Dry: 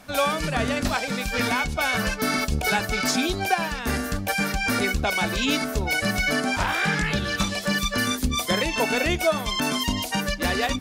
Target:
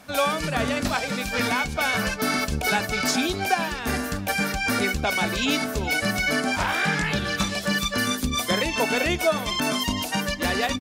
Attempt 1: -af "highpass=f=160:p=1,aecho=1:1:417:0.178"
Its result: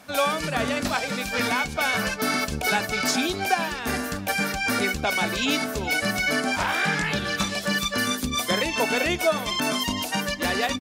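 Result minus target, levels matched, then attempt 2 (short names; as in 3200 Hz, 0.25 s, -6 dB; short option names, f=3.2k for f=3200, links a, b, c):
125 Hz band -2.5 dB
-af "highpass=f=67:p=1,aecho=1:1:417:0.178"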